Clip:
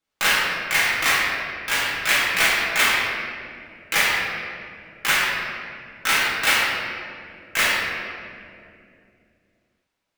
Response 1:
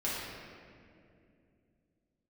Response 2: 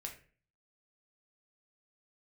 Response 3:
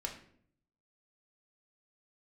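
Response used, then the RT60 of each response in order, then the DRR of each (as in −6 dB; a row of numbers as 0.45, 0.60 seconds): 1; 2.5, 0.40, 0.60 seconds; −8.5, 1.0, 0.0 decibels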